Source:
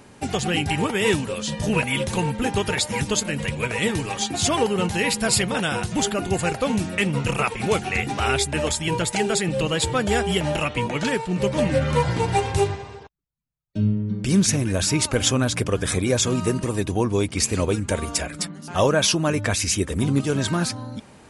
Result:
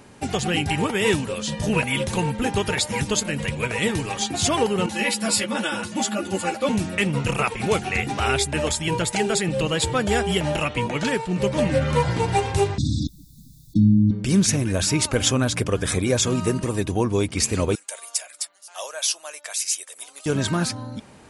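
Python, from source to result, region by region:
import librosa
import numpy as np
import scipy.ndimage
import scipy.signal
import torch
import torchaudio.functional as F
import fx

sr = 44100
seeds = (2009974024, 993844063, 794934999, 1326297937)

y = fx.chain(x, sr, fx.highpass(hz=120.0, slope=24),
    fx.comb(ms=3.5, depth=0.79),
    fx.ensemble(), at=(4.86, 6.69))
y = fx.chain(y, sr, fx.brickwall_bandstop(low_hz=330.0, high_hz=3400.0),
    fx.peak_eq(hz=270.0, db=6.5, octaves=1.6),
    fx.env_flatten(amount_pct=70), at=(12.78, 14.11))
y = fx.chain(y, sr, fx.highpass_res(hz=620.0, q=2.5),
    fx.differentiator(), at=(17.75, 20.26))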